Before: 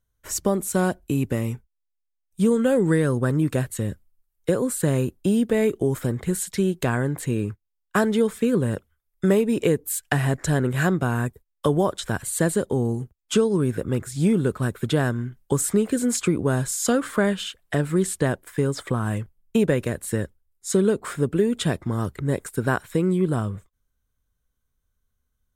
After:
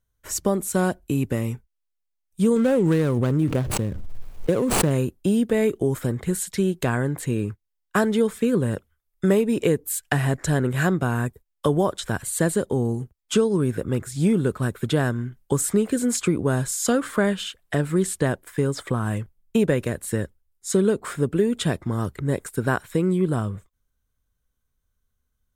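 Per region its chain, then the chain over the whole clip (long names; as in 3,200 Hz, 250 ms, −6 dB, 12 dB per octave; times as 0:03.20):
0:02.56–0:04.91: running median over 25 samples + background raised ahead of every attack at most 21 dB per second
whole clip: no processing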